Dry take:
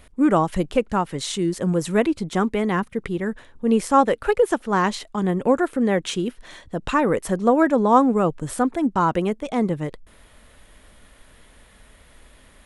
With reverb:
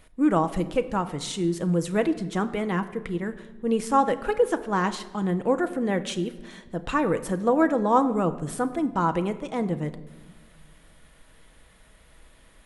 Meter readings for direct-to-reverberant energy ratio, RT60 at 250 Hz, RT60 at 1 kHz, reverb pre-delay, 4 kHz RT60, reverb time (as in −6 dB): 8.5 dB, 2.0 s, 1.1 s, 6 ms, 0.85 s, 1.3 s